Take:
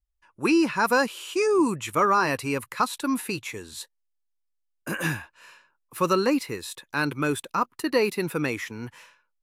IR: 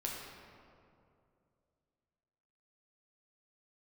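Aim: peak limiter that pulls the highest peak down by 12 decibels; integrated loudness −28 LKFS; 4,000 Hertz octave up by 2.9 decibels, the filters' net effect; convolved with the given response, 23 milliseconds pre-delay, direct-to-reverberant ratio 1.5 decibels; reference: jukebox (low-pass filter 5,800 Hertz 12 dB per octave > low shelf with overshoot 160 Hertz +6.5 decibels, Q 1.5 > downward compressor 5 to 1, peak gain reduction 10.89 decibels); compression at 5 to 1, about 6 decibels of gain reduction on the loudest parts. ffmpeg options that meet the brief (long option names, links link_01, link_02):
-filter_complex "[0:a]equalizer=frequency=4000:width_type=o:gain=4.5,acompressor=threshold=-23dB:ratio=5,alimiter=level_in=0.5dB:limit=-24dB:level=0:latency=1,volume=-0.5dB,asplit=2[link_01][link_02];[1:a]atrim=start_sample=2205,adelay=23[link_03];[link_02][link_03]afir=irnorm=-1:irlink=0,volume=-3dB[link_04];[link_01][link_04]amix=inputs=2:normalize=0,lowpass=5800,lowshelf=frequency=160:width_type=q:width=1.5:gain=6.5,acompressor=threshold=-36dB:ratio=5,volume=11dB"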